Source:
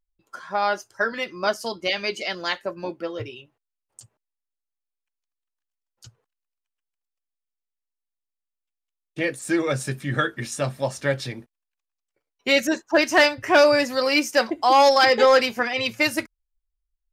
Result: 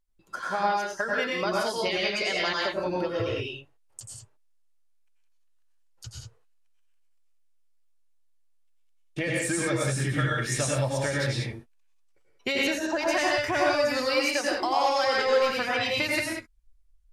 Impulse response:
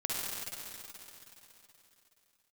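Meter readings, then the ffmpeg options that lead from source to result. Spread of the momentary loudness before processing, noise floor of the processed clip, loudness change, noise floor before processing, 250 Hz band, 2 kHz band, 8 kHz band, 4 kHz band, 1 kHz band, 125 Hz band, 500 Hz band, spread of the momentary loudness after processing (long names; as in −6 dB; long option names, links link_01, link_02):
15 LU, −62 dBFS, −5.0 dB, −85 dBFS, −4.5 dB, −4.0 dB, +1.0 dB, −4.0 dB, −5.5 dB, +2.5 dB, −5.5 dB, 18 LU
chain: -filter_complex "[0:a]asubboost=boost=3.5:cutoff=94,acompressor=threshold=-30dB:ratio=6[link_01];[1:a]atrim=start_sample=2205,afade=type=out:start_time=0.16:duration=0.01,atrim=end_sample=7497,asetrate=24696,aresample=44100[link_02];[link_01][link_02]afir=irnorm=-1:irlink=0,volume=1dB"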